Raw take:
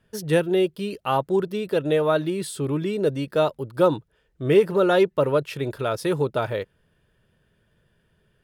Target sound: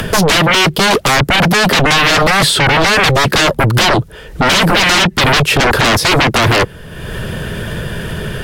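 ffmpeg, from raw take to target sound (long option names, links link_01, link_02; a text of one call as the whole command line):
ffmpeg -i in.wav -filter_complex "[0:a]acrossover=split=200|460|4500[link_01][link_02][link_03][link_04];[link_01]acompressor=threshold=-35dB:ratio=4[link_05];[link_02]acompressor=threshold=-25dB:ratio=4[link_06];[link_03]acompressor=threshold=-35dB:ratio=4[link_07];[link_04]acompressor=threshold=-56dB:ratio=4[link_08];[link_05][link_06][link_07][link_08]amix=inputs=4:normalize=0,asplit=2[link_09][link_10];[link_10]alimiter=limit=-22.5dB:level=0:latency=1:release=67,volume=-2dB[link_11];[link_09][link_11]amix=inputs=2:normalize=0,acompressor=mode=upward:threshold=-37dB:ratio=2.5,aeval=exprs='0.251*sin(PI/2*8.91*val(0)/0.251)':channel_layout=same,volume=5dB" -ar 44100 -c:a libvorbis -b:a 64k out.ogg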